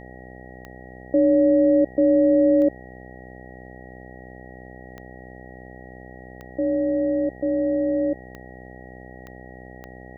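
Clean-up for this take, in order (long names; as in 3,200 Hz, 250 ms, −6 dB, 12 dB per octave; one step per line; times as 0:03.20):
click removal
hum removal 63 Hz, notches 13
notch filter 1,900 Hz, Q 30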